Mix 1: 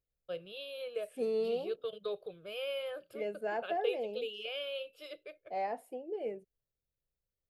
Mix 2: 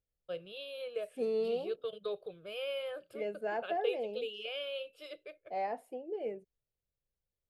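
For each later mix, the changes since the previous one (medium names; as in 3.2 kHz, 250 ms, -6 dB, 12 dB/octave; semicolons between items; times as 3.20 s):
first voice: add peaking EQ 9 kHz +7.5 dB 0.3 oct; master: add treble shelf 10 kHz -8.5 dB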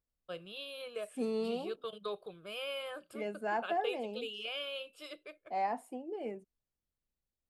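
master: add graphic EQ 125/250/500/1000/8000 Hz -5/+9/-8/+9/+10 dB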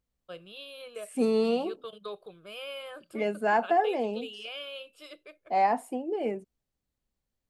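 second voice +9.5 dB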